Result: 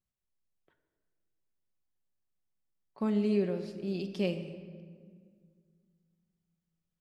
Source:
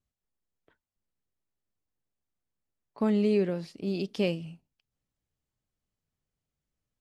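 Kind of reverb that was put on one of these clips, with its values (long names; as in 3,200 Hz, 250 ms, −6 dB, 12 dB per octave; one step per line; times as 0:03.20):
rectangular room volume 2,800 cubic metres, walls mixed, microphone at 1 metre
level −5.5 dB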